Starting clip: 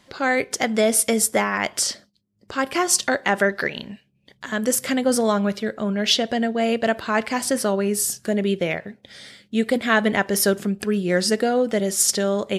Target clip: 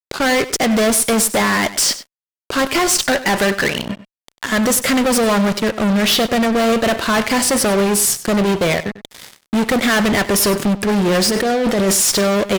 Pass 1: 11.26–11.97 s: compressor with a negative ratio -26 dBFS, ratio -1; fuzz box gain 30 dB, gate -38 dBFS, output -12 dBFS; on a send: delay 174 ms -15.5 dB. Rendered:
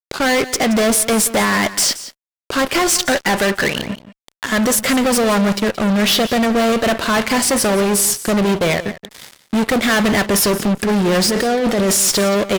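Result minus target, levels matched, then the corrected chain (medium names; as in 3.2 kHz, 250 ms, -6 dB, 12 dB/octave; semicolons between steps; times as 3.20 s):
echo 77 ms late
11.26–11.97 s: compressor with a negative ratio -26 dBFS, ratio -1; fuzz box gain 30 dB, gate -38 dBFS, output -12 dBFS; on a send: delay 97 ms -15.5 dB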